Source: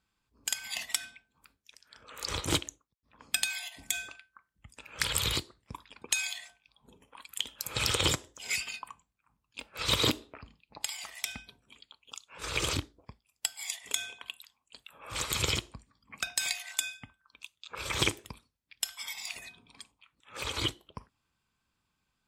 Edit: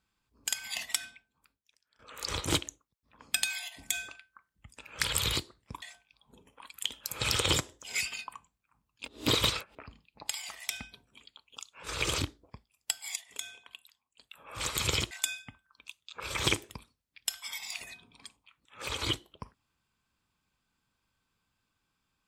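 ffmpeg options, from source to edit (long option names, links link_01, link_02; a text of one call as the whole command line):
ffmpeg -i in.wav -filter_complex "[0:a]asplit=8[link_01][link_02][link_03][link_04][link_05][link_06][link_07][link_08];[link_01]atrim=end=1.99,asetpts=PTS-STARTPTS,afade=type=out:start_time=1.08:duration=0.91:curve=qua:silence=0.125893[link_09];[link_02]atrim=start=1.99:end=5.822,asetpts=PTS-STARTPTS,afade=type=in:duration=0.004:curve=hsin:silence=0.125893[link_10];[link_03]atrim=start=6.368:end=9.632[link_11];[link_04]atrim=start=9.628:end=10.302,asetpts=PTS-STARTPTS,areverse[link_12];[link_05]atrim=start=10.298:end=13.712[link_13];[link_06]atrim=start=13.708:end=14.862,asetpts=PTS-STARTPTS,volume=-7.5dB[link_14];[link_07]atrim=start=14.858:end=15.662[link_15];[link_08]atrim=start=16.658[link_16];[link_09][link_10]concat=n=2:v=0:a=1[link_17];[link_17][link_11]acrossfade=duration=0.004:curve1=hsin:curve2=hsin[link_18];[link_18][link_12]acrossfade=duration=0.004:curve1=hsin:curve2=hsin[link_19];[link_19][link_13]acrossfade=duration=0.004:curve1=hsin:curve2=hsin[link_20];[link_20][link_14]acrossfade=duration=0.004:curve1=hsin:curve2=hsin[link_21];[link_21][link_15]acrossfade=duration=0.004:curve1=hsin:curve2=hsin[link_22];[link_22][link_16]acrossfade=duration=0.004:curve1=hsin:curve2=hsin" out.wav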